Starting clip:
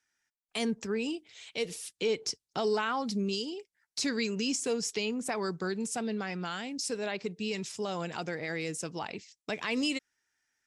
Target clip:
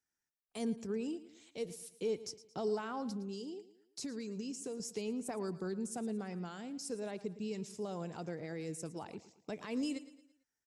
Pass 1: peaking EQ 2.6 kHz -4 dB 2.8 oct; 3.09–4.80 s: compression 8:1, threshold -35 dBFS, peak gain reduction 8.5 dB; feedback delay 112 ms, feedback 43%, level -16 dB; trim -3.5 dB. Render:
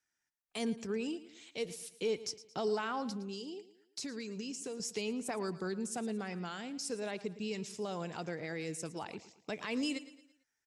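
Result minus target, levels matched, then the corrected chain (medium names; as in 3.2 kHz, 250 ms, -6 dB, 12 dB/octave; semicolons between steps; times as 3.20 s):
2 kHz band +6.0 dB
peaking EQ 2.6 kHz -13 dB 2.8 oct; 3.09–4.80 s: compression 8:1, threshold -35 dBFS, peak gain reduction 7.5 dB; feedback delay 112 ms, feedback 43%, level -16 dB; trim -3.5 dB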